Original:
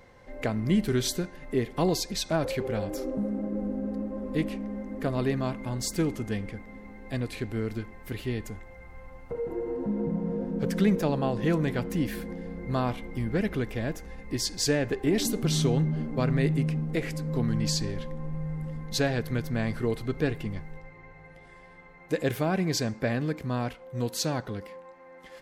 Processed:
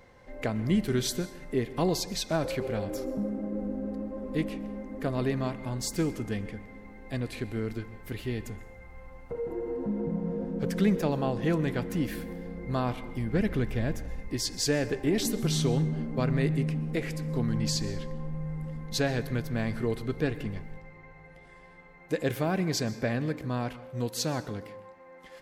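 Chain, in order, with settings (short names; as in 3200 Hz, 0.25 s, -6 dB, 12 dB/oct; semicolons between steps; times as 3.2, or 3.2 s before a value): 13.33–14.28 low shelf 130 Hz +8 dB; plate-style reverb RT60 0.81 s, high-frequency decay 0.75×, pre-delay 0.11 s, DRR 16 dB; gain -1.5 dB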